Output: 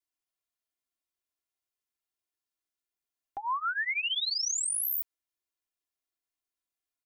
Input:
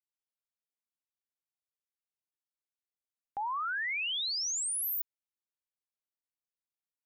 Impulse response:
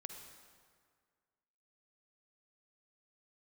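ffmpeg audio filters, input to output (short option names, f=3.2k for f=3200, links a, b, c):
-af "aecho=1:1:2.9:0.9"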